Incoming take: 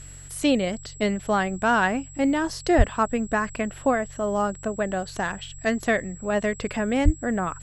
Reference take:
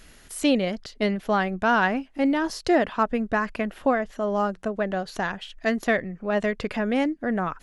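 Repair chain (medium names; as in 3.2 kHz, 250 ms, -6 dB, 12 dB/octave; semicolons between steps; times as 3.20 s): de-hum 46.2 Hz, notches 3; band-stop 7.7 kHz, Q 30; de-plosive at 2.77/7.04 s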